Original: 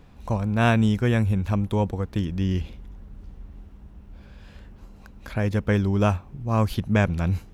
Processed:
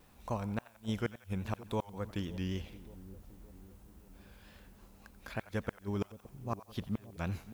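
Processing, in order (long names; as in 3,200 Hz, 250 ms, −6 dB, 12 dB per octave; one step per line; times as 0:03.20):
low-shelf EQ 270 Hz −9 dB
gate with flip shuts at −16 dBFS, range −37 dB
background noise blue −64 dBFS
on a send: echo with a time of its own for lows and highs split 640 Hz, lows 569 ms, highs 89 ms, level −15.5 dB
on the sum: pitch vibrato 3.6 Hz 71 cents
level −6 dB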